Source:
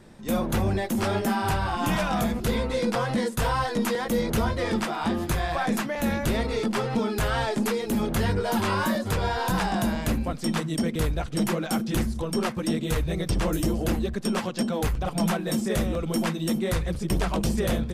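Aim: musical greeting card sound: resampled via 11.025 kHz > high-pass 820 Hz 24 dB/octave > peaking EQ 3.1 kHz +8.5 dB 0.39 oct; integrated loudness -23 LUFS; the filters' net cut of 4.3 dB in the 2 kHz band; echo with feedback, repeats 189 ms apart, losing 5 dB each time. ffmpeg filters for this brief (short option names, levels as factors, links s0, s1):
-af "equalizer=f=2000:t=o:g=-7,aecho=1:1:189|378|567|756|945|1134|1323:0.562|0.315|0.176|0.0988|0.0553|0.031|0.0173,aresample=11025,aresample=44100,highpass=f=820:w=0.5412,highpass=f=820:w=1.3066,equalizer=f=3100:t=o:w=0.39:g=8.5,volume=3.16"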